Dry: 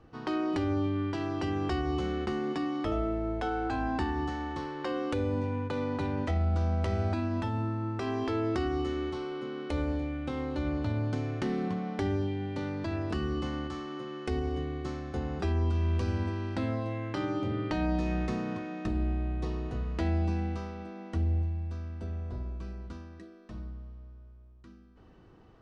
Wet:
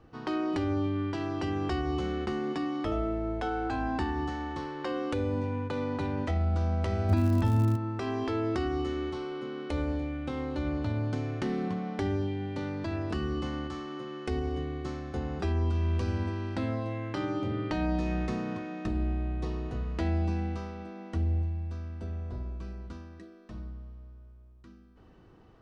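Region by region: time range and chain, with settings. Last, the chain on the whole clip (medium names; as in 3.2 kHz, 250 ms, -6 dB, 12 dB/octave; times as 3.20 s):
7.08–7.75 s: bass shelf 240 Hz +10.5 dB + crackle 160 per s -34 dBFS
whole clip: none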